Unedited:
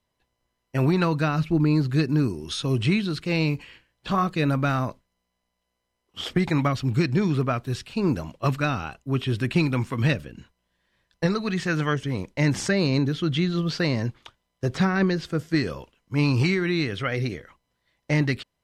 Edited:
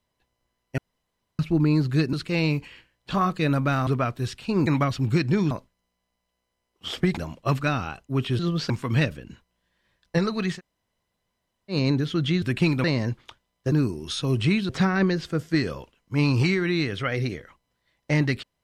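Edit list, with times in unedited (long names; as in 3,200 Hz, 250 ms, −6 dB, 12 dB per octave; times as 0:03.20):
0:00.78–0:01.39: fill with room tone
0:02.13–0:03.10: move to 0:14.69
0:04.84–0:06.50: swap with 0:07.35–0:08.14
0:09.36–0:09.78: swap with 0:13.50–0:13.81
0:11.64–0:12.81: fill with room tone, crossfade 0.10 s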